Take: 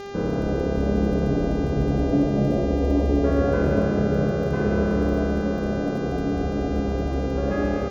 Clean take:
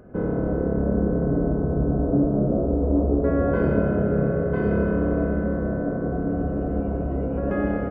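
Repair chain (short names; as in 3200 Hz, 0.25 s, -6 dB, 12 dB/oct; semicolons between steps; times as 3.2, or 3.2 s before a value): de-click; de-hum 400 Hz, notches 17; inverse comb 0.247 s -10.5 dB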